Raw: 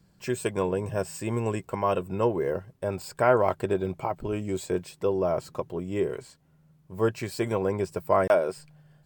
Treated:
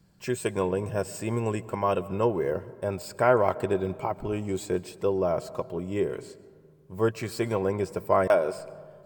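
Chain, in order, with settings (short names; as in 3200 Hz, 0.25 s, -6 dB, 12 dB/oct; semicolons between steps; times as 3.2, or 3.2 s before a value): digital reverb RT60 1.9 s, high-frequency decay 0.4×, pre-delay 90 ms, DRR 18 dB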